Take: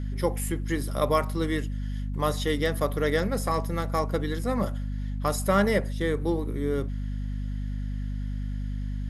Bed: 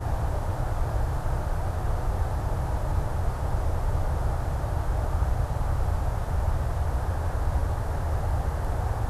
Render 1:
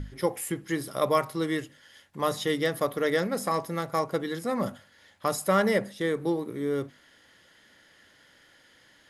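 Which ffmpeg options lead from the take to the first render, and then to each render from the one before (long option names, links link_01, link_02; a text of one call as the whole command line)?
ffmpeg -i in.wav -af "bandreject=frequency=50:width_type=h:width=6,bandreject=frequency=100:width_type=h:width=6,bandreject=frequency=150:width_type=h:width=6,bandreject=frequency=200:width_type=h:width=6,bandreject=frequency=250:width_type=h:width=6" out.wav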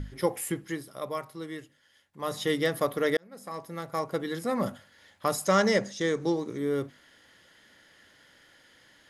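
ffmpeg -i in.wav -filter_complex "[0:a]asettb=1/sr,asplit=3[link_01][link_02][link_03];[link_01]atrim=end=5.454[link_04];[link_02]atrim=start=5.45:end=6.58,asetpts=PTS-STARTPTS,afade=type=in:duration=0.004:curve=qsin,afade=type=out:start_time=1.126:duration=0.004:curve=qsin,lowpass=frequency=6300:width_type=q:width=5.5[link_05];[link_03]atrim=start=6.576[link_06];[link_04][link_05]acrossfade=duration=0.004:curve1=hsin:curve2=qsin[link_07];[link_07][link_06]acrossfade=duration=0.004:curve1=qsin:curve2=hsin,asplit=4[link_08][link_09][link_10][link_11];[link_08]atrim=end=0.86,asetpts=PTS-STARTPTS,afade=type=out:start_time=0.55:duration=0.31:silence=0.316228[link_12];[link_09]atrim=start=0.86:end=2.17,asetpts=PTS-STARTPTS,volume=-10dB[link_13];[link_10]atrim=start=2.17:end=3.17,asetpts=PTS-STARTPTS,afade=type=in:duration=0.31:silence=0.316228,afade=type=out:start_time=0.996:duration=0.004:curve=hsin[link_14];[link_11]atrim=start=3.17,asetpts=PTS-STARTPTS,afade=type=in:duration=1.24[link_15];[link_12][link_13][link_14][link_15]concat=n=4:v=0:a=1" out.wav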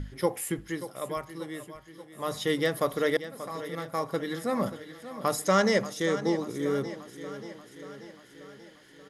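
ffmpeg -i in.wav -af "aecho=1:1:584|1168|1752|2336|2920|3504:0.224|0.132|0.0779|0.046|0.0271|0.016" out.wav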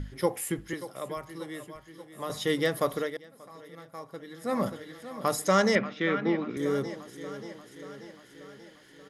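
ffmpeg -i in.wav -filter_complex "[0:a]asettb=1/sr,asplit=3[link_01][link_02][link_03];[link_01]atrim=end=0.734[link_04];[link_02]atrim=start=0.73:end=2.3,asetpts=PTS-STARTPTS,afade=type=in:duration=0.004:curve=qsin,afade=type=out:start_time=1.566:duration=0.004:curve=qsin,acrossover=split=380|6600[link_05][link_06][link_07];[link_05]acompressor=threshold=-41dB:ratio=4[link_08];[link_06]acompressor=threshold=-33dB:ratio=4[link_09];[link_07]acompressor=threshold=-53dB:ratio=4[link_10];[link_08][link_09][link_10]amix=inputs=3:normalize=0[link_11];[link_03]atrim=start=2.296[link_12];[link_04][link_11]acrossfade=duration=0.004:curve1=hsin:curve2=qsin[link_13];[link_13][link_12]acrossfade=duration=0.004:curve1=qsin:curve2=hsin,asettb=1/sr,asplit=3[link_14][link_15][link_16];[link_14]atrim=end=5.754[link_17];[link_15]atrim=start=5.75:end=6.57,asetpts=PTS-STARTPTS,afade=type=in:duration=0.004:curve=qsin,afade=type=out:start_time=0.816:duration=0.004:curve=qsin,highpass=130,equalizer=frequency=240:width_type=q:width=4:gain=8,equalizer=frequency=500:width_type=q:width=4:gain=-4,equalizer=frequency=870:width_type=q:width=4:gain=-3,equalizer=frequency=1400:width_type=q:width=4:gain=6,equalizer=frequency=2400:width_type=q:width=4:gain=10,lowpass=frequency=3500:width=0.5412,lowpass=frequency=3500:width=1.3066[link_18];[link_16]atrim=start=6.566[link_19];[link_17][link_18]acrossfade=duration=0.004:curve1=hsin:curve2=qsin[link_20];[link_20][link_19]acrossfade=duration=0.004:curve1=qsin:curve2=hsin,asplit=3[link_21][link_22][link_23];[link_21]atrim=end=3.1,asetpts=PTS-STARTPTS,afade=type=out:start_time=2.96:duration=0.14:silence=0.266073[link_24];[link_22]atrim=start=3.1:end=4.38,asetpts=PTS-STARTPTS,volume=-11.5dB[link_25];[link_23]atrim=start=4.38,asetpts=PTS-STARTPTS,afade=type=in:duration=0.14:silence=0.266073[link_26];[link_24][link_25][link_26]concat=n=3:v=0:a=1" out.wav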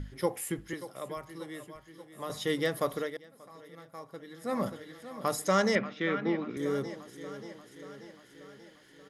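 ffmpeg -i in.wav -af "volume=-3dB" out.wav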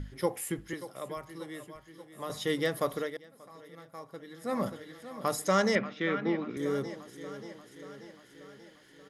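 ffmpeg -i in.wav -af anull out.wav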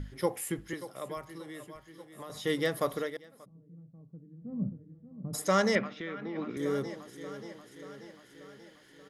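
ffmpeg -i in.wav -filter_complex "[0:a]asplit=3[link_01][link_02][link_03];[link_01]afade=type=out:start_time=1.37:duration=0.02[link_04];[link_02]acompressor=threshold=-39dB:ratio=6:attack=3.2:release=140:knee=1:detection=peak,afade=type=in:start_time=1.37:duration=0.02,afade=type=out:start_time=2.43:duration=0.02[link_05];[link_03]afade=type=in:start_time=2.43:duration=0.02[link_06];[link_04][link_05][link_06]amix=inputs=3:normalize=0,asplit=3[link_07][link_08][link_09];[link_07]afade=type=out:start_time=3.44:duration=0.02[link_10];[link_08]lowpass=frequency=170:width_type=q:width=2,afade=type=in:start_time=3.44:duration=0.02,afade=type=out:start_time=5.33:duration=0.02[link_11];[link_09]afade=type=in:start_time=5.33:duration=0.02[link_12];[link_10][link_11][link_12]amix=inputs=3:normalize=0,asplit=3[link_13][link_14][link_15];[link_13]afade=type=out:start_time=5.87:duration=0.02[link_16];[link_14]acompressor=threshold=-37dB:ratio=3:attack=3.2:release=140:knee=1:detection=peak,afade=type=in:start_time=5.87:duration=0.02,afade=type=out:start_time=6.35:duration=0.02[link_17];[link_15]afade=type=in:start_time=6.35:duration=0.02[link_18];[link_16][link_17][link_18]amix=inputs=3:normalize=0" out.wav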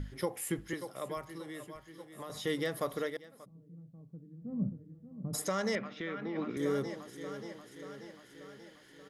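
ffmpeg -i in.wav -af "alimiter=limit=-22.5dB:level=0:latency=1:release=243" out.wav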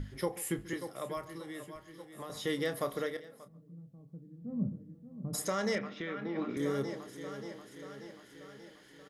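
ffmpeg -i in.wav -filter_complex "[0:a]asplit=2[link_01][link_02];[link_02]adelay=29,volume=-11dB[link_03];[link_01][link_03]amix=inputs=2:normalize=0,asplit=2[link_04][link_05];[link_05]adelay=138,lowpass=frequency=1100:poles=1,volume=-17dB,asplit=2[link_06][link_07];[link_07]adelay=138,lowpass=frequency=1100:poles=1,volume=0.31,asplit=2[link_08][link_09];[link_09]adelay=138,lowpass=frequency=1100:poles=1,volume=0.31[link_10];[link_04][link_06][link_08][link_10]amix=inputs=4:normalize=0" out.wav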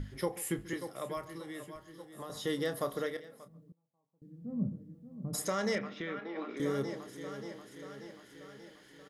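ffmpeg -i in.wav -filter_complex "[0:a]asettb=1/sr,asplit=3[link_01][link_02][link_03];[link_01]atrim=end=1.764[link_04];[link_02]atrim=start=1.76:end=3.04,asetpts=PTS-STARTPTS,afade=type=in:duration=0.004:curve=qsin,afade=type=out:start_time=1.276:duration=0.004:curve=qsin,equalizer=frequency=2300:width=3.8:gain=-7.5[link_05];[link_03]atrim=start=3.036[link_06];[link_04][link_05]acrossfade=duration=0.004:curve1=hsin:curve2=qsin[link_07];[link_07][link_06]acrossfade=duration=0.004:curve1=qsin:curve2=hsin,asettb=1/sr,asplit=3[link_08][link_09][link_10];[link_08]atrim=end=3.724[link_11];[link_09]atrim=start=3.72:end=4.22,asetpts=PTS-STARTPTS,afade=type=in:duration=0.004:curve=qsin,afade=type=out:start_time=0.496:duration=0.004:curve=qsin,bandpass=frequency=920:width_type=q:width=7[link_12];[link_10]atrim=start=4.216[link_13];[link_11][link_12]acrossfade=duration=0.004:curve1=hsin:curve2=qsin[link_14];[link_14][link_13]acrossfade=duration=0.004:curve1=qsin:curve2=hsin,asettb=1/sr,asplit=3[link_15][link_16][link_17];[link_15]atrim=end=6.194[link_18];[link_16]atrim=start=6.19:end=6.6,asetpts=PTS-STARTPTS,afade=type=in:duration=0.004:curve=qsin,afade=type=out:start_time=0.406:duration=0.004:curve=qsin,highpass=400,lowpass=5800[link_19];[link_17]atrim=start=6.596[link_20];[link_18][link_19]acrossfade=duration=0.004:curve1=hsin:curve2=qsin[link_21];[link_21][link_20]acrossfade=duration=0.004:curve1=qsin:curve2=hsin" out.wav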